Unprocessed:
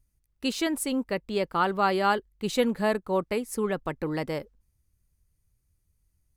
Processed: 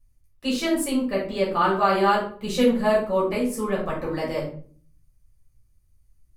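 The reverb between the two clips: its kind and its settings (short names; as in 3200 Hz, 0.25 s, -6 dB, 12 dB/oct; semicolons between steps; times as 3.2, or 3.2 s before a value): shoebox room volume 390 m³, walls furnished, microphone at 5.8 m; gain -5.5 dB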